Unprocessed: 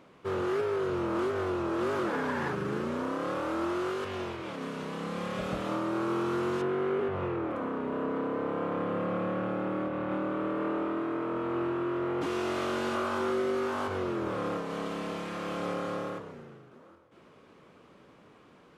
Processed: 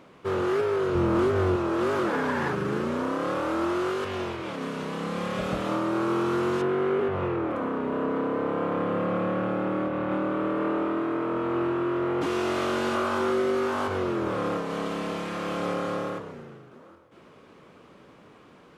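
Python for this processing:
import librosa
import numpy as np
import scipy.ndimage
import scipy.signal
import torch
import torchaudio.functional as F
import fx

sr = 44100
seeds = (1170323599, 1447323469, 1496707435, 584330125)

y = fx.low_shelf(x, sr, hz=190.0, db=11.5, at=(0.95, 1.56))
y = y * 10.0 ** (4.5 / 20.0)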